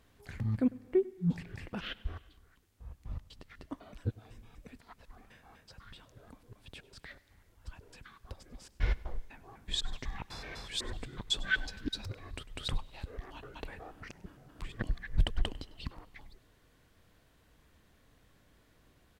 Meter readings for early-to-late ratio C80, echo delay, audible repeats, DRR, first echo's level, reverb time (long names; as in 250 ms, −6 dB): no reverb audible, 99 ms, 1, no reverb audible, −20.5 dB, no reverb audible